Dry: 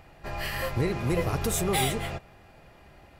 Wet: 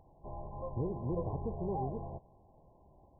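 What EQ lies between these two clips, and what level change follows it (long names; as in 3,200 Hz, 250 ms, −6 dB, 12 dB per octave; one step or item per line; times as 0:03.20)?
linear-phase brick-wall low-pass 1,100 Hz
−8.5 dB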